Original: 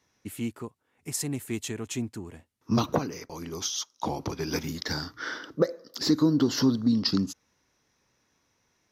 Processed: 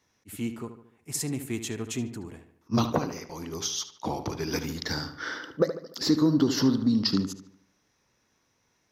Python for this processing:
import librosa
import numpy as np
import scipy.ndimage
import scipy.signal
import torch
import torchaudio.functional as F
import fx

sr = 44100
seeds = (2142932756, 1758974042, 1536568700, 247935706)

y = fx.echo_filtered(x, sr, ms=74, feedback_pct=48, hz=3800.0, wet_db=-10.0)
y = fx.attack_slew(y, sr, db_per_s=540.0)